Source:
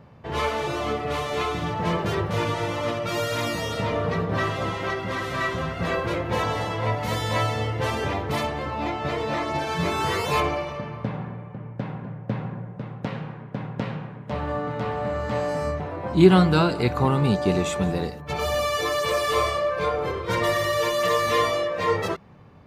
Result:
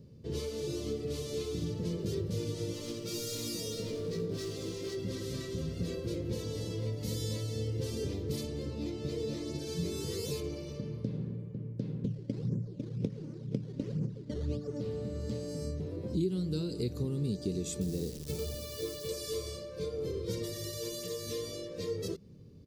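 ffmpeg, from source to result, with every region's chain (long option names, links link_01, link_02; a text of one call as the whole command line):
ffmpeg -i in.wav -filter_complex "[0:a]asettb=1/sr,asplit=3[link_01][link_02][link_03];[link_01]atrim=end=2.734[link_04];[link_02]atrim=start=2.73:end=4.97,asetpts=PTS-STARTPTS,afade=type=in:duration=0.004:curve=qsin,afade=type=out:start_time=2.236:duration=0.004:curve=qsin,equalizer=frequency=76:width=0.44:gain=-10.5,asoftclip=type=hard:threshold=-24.5dB,asplit=2[link_05][link_06];[link_06]adelay=18,volume=-6dB[link_07];[link_05][link_07]amix=inputs=2:normalize=0,atrim=end_sample=98784[link_08];[link_03]atrim=start=4.966[link_09];[link_04][link_08]acrossfade=duration=0.004:curve1=hsin:curve2=qsin[link_10];[link_10][link_09]acrossfade=duration=0.004:curve1=qsin:curve2=hsin,asettb=1/sr,asplit=3[link_11][link_12][link_13];[link_11]atrim=end=12.044[link_14];[link_12]atrim=start=12.04:end=14.81,asetpts=PTS-STARTPTS,afade=type=in:duration=0.004:curve=qsin,afade=type=out:start_time=2.766:duration=0.004:curve=qsin,aphaser=in_gain=1:out_gain=1:delay=3.5:decay=0.67:speed=2:type=sinusoidal,acrusher=samples=12:mix=1:aa=0.000001:lfo=1:lforange=12:lforate=1.4,lowpass=2200[link_15];[link_13]atrim=start=14.806[link_16];[link_14][link_15]acrossfade=duration=0.004:curve1=hsin:curve2=qsin[link_17];[link_17][link_16]acrossfade=duration=0.004:curve1=qsin:curve2=hsin,asettb=1/sr,asplit=3[link_18][link_19][link_20];[link_18]atrim=end=17.814[link_21];[link_19]atrim=start=17.81:end=19.09,asetpts=PTS-STARTPTS,afade=type=in:duration=0.004:curve=qsin,afade=type=out:start_time=1.276:duration=0.004:curve=qsin,lowpass=3700,acrusher=bits=7:dc=4:mix=0:aa=0.000001[link_22];[link_20]atrim=start=19.086[link_23];[link_21][link_22]acrossfade=duration=0.004:curve1=hsin:curve2=qsin[link_24];[link_24][link_23]acrossfade=duration=0.004:curve1=qsin:curve2=hsin,acompressor=threshold=-26dB:ratio=6,firequalizer=gain_entry='entry(450,0);entry(730,-25);entry(1600,-21);entry(4600,3)':delay=0.05:min_phase=1,volume=-3dB" out.wav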